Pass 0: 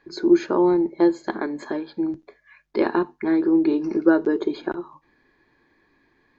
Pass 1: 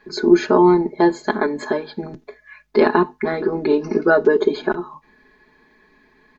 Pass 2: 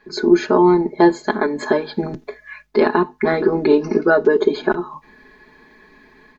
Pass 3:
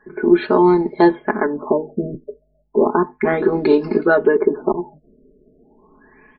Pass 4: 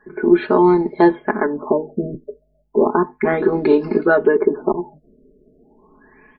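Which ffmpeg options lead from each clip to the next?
ffmpeg -i in.wav -af "aecho=1:1:4.7:0.97,volume=5dB" out.wav
ffmpeg -i in.wav -af "dynaudnorm=framelen=100:gausssize=3:maxgain=7.5dB,volume=-1dB" out.wav
ffmpeg -i in.wav -af "afftfilt=real='re*lt(b*sr/1024,610*pow(5500/610,0.5+0.5*sin(2*PI*0.33*pts/sr)))':imag='im*lt(b*sr/1024,610*pow(5500/610,0.5+0.5*sin(2*PI*0.33*pts/sr)))':win_size=1024:overlap=0.75" out.wav
ffmpeg -i in.wav -filter_complex "[0:a]acrossover=split=3900[link_01][link_02];[link_02]acompressor=threshold=-56dB:ratio=4:attack=1:release=60[link_03];[link_01][link_03]amix=inputs=2:normalize=0" out.wav

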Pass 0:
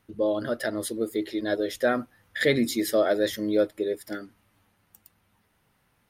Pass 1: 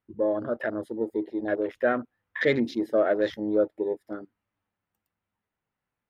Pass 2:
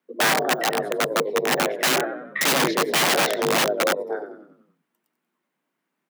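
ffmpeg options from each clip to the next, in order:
ffmpeg -i in.wav -af "afwtdn=0.0158,bass=frequency=250:gain=-3,treble=frequency=4000:gain=-13" out.wav
ffmpeg -i in.wav -filter_complex "[0:a]asplit=7[link_01][link_02][link_03][link_04][link_05][link_06][link_07];[link_02]adelay=93,afreqshift=-45,volume=-9dB[link_08];[link_03]adelay=186,afreqshift=-90,volume=-14.8dB[link_09];[link_04]adelay=279,afreqshift=-135,volume=-20.7dB[link_10];[link_05]adelay=372,afreqshift=-180,volume=-26.5dB[link_11];[link_06]adelay=465,afreqshift=-225,volume=-32.4dB[link_12];[link_07]adelay=558,afreqshift=-270,volume=-38.2dB[link_13];[link_01][link_08][link_09][link_10][link_11][link_12][link_13]amix=inputs=7:normalize=0,aeval=exprs='(mod(11.2*val(0)+1,2)-1)/11.2':channel_layout=same,afreqshift=140,volume=6.5dB" out.wav

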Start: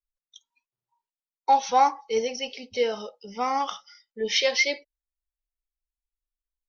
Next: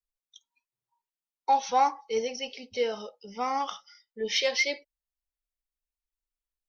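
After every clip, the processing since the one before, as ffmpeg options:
ffmpeg -i in.wav -af "acontrast=30,volume=-8.5dB" out.wav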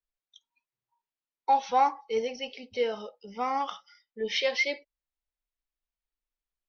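ffmpeg -i in.wav -af "lowpass=3900" out.wav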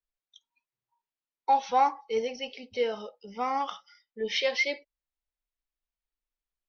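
ffmpeg -i in.wav -af anull out.wav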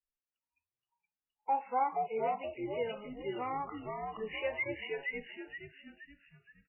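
ffmpeg -i in.wav -filter_complex "[0:a]asplit=2[link_01][link_02];[link_02]asplit=5[link_03][link_04][link_05][link_06][link_07];[link_03]adelay=472,afreqshift=-96,volume=-3dB[link_08];[link_04]adelay=944,afreqshift=-192,volume=-10.7dB[link_09];[link_05]adelay=1416,afreqshift=-288,volume=-18.5dB[link_10];[link_06]adelay=1888,afreqshift=-384,volume=-26.2dB[link_11];[link_07]adelay=2360,afreqshift=-480,volume=-34dB[link_12];[link_08][link_09][link_10][link_11][link_12]amix=inputs=5:normalize=0[link_13];[link_01][link_13]amix=inputs=2:normalize=0,volume=-7.5dB" -ar 11025 -c:a libmp3lame -b:a 8k out.mp3

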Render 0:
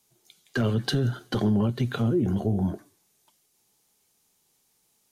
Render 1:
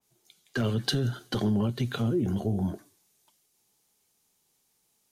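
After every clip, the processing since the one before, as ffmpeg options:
ffmpeg -i in.wav -af "adynamicequalizer=threshold=0.00398:dfrequency=2400:dqfactor=0.7:tfrequency=2400:tqfactor=0.7:attack=5:release=100:ratio=0.375:range=2.5:mode=boostabove:tftype=highshelf,volume=-3dB" out.wav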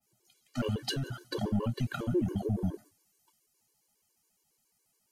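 ffmpeg -i in.wav -filter_complex "[0:a]bandreject=frequency=3600:width=6.5,acrossover=split=270|1100[link_01][link_02][link_03];[link_01]aeval=exprs='clip(val(0),-1,0.0237)':channel_layout=same[link_04];[link_04][link_02][link_03]amix=inputs=3:normalize=0,afftfilt=real='re*gt(sin(2*PI*7.2*pts/sr)*(1-2*mod(floor(b*sr/1024/300),2)),0)':imag='im*gt(sin(2*PI*7.2*pts/sr)*(1-2*mod(floor(b*sr/1024/300),2)),0)':win_size=1024:overlap=0.75" out.wav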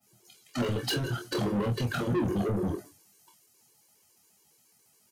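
ffmpeg -i in.wav -af "highpass=frequency=70:width=0.5412,highpass=frequency=70:width=1.3066,asoftclip=type=tanh:threshold=-36dB,aecho=1:1:25|45:0.531|0.251,volume=9dB" out.wav

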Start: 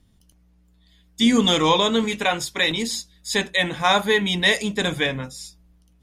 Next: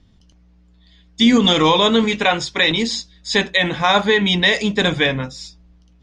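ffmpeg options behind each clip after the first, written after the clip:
ffmpeg -i in.wav -af "lowpass=frequency=6000:width=0.5412,lowpass=frequency=6000:width=1.3066,alimiter=limit=-10.5dB:level=0:latency=1:release=66,volume=6dB" out.wav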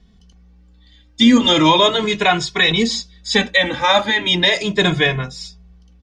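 ffmpeg -i in.wav -filter_complex "[0:a]asplit=2[link_01][link_02];[link_02]adelay=2.3,afreqshift=0.37[link_03];[link_01][link_03]amix=inputs=2:normalize=1,volume=4.5dB" out.wav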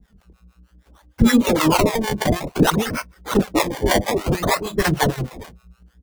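ffmpeg -i in.wav -filter_complex "[0:a]acrusher=samples=23:mix=1:aa=0.000001:lfo=1:lforange=23:lforate=0.58,acrossover=split=520[link_01][link_02];[link_01]aeval=exprs='val(0)*(1-1/2+1/2*cos(2*PI*6.5*n/s))':channel_layout=same[link_03];[link_02]aeval=exprs='val(0)*(1-1/2-1/2*cos(2*PI*6.5*n/s))':channel_layout=same[link_04];[link_03][link_04]amix=inputs=2:normalize=0,volume=2dB" out.wav

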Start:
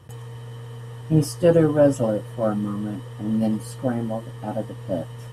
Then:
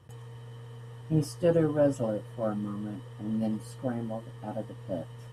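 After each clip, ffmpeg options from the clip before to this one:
ffmpeg -i in.wav -af "highshelf=frequency=11000:gain=-6.5,volume=-8dB" out.wav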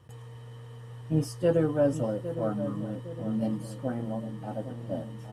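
ffmpeg -i in.wav -filter_complex "[0:a]asplit=2[link_01][link_02];[link_02]adelay=809,lowpass=frequency=970:poles=1,volume=-10dB,asplit=2[link_03][link_04];[link_04]adelay=809,lowpass=frequency=970:poles=1,volume=0.53,asplit=2[link_05][link_06];[link_06]adelay=809,lowpass=frequency=970:poles=1,volume=0.53,asplit=2[link_07][link_08];[link_08]adelay=809,lowpass=frequency=970:poles=1,volume=0.53,asplit=2[link_09][link_10];[link_10]adelay=809,lowpass=frequency=970:poles=1,volume=0.53,asplit=2[link_11][link_12];[link_12]adelay=809,lowpass=frequency=970:poles=1,volume=0.53[link_13];[link_01][link_03][link_05][link_07][link_09][link_11][link_13]amix=inputs=7:normalize=0" out.wav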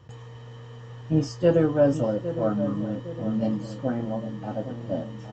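ffmpeg -i in.wav -filter_complex "[0:a]asplit=2[link_01][link_02];[link_02]adelay=29,volume=-11.5dB[link_03];[link_01][link_03]amix=inputs=2:normalize=0,aresample=16000,aresample=44100,volume=4.5dB" out.wav

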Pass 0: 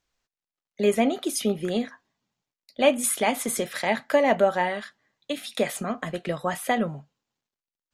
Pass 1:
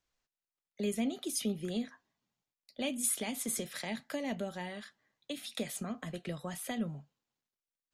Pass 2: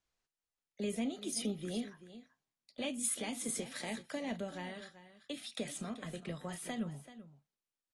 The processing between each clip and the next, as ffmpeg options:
ffmpeg -i in.wav -filter_complex "[0:a]acrossover=split=290|3000[link_01][link_02][link_03];[link_02]acompressor=threshold=-38dB:ratio=4[link_04];[link_01][link_04][link_03]amix=inputs=3:normalize=0,volume=-6dB" out.wav
ffmpeg -i in.wav -af "aecho=1:1:384:0.188,volume=-3dB" -ar 24000 -c:a aac -b:a 32k out.aac

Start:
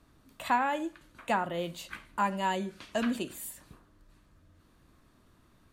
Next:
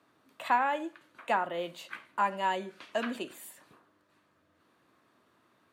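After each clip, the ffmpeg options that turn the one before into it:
ffmpeg -i in.wav -af "highpass=frequency=97:width=0.5412,highpass=frequency=97:width=1.3066,bass=frequency=250:gain=-14,treble=frequency=4000:gain=-8,volume=1dB" out.wav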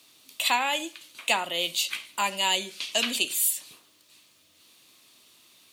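ffmpeg -i in.wav -af "aexciter=amount=13.3:drive=2.8:freq=2400" out.wav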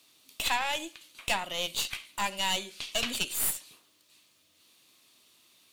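ffmpeg -i in.wav -af "aeval=exprs='(tanh(10*val(0)+0.8)-tanh(0.8))/10':channel_layout=same" out.wav

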